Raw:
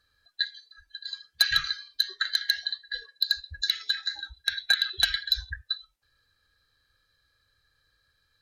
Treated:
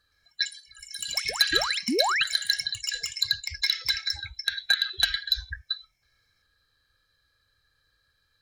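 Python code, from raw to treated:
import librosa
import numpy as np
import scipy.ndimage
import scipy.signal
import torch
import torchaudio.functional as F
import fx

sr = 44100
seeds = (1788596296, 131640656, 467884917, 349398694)

y = fx.spec_paint(x, sr, seeds[0], shape='rise', start_s=1.88, length_s=0.36, low_hz=210.0, high_hz=3400.0, level_db=-25.0)
y = fx.echo_pitch(y, sr, ms=117, semitones=5, count=3, db_per_echo=-6.0)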